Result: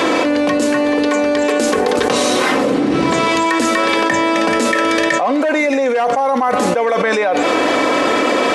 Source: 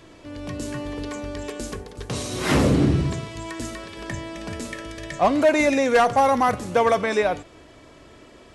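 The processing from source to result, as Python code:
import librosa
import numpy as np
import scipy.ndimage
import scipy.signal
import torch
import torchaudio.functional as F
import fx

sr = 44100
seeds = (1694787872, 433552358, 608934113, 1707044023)

y = scipy.signal.sosfilt(scipy.signal.butter(2, 380.0, 'highpass', fs=sr, output='sos'), x)
y = fx.high_shelf(y, sr, hz=3600.0, db=-10.5)
y = y + 0.42 * np.pad(y, (int(3.9 * sr / 1000.0), 0))[:len(y)]
y = fx.env_flatten(y, sr, amount_pct=100)
y = y * 10.0 ** (-1.5 / 20.0)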